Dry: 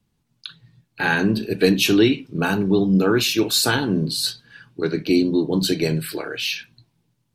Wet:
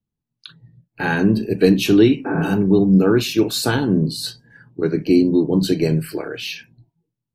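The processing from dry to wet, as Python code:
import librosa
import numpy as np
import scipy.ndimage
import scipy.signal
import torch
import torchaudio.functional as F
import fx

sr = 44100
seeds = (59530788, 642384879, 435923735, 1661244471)

y = fx.spec_repair(x, sr, seeds[0], start_s=2.28, length_s=0.21, low_hz=220.0, high_hz=2600.0, source='after')
y = fx.tilt_shelf(y, sr, db=4.5, hz=870.0)
y = fx.noise_reduce_blind(y, sr, reduce_db=17)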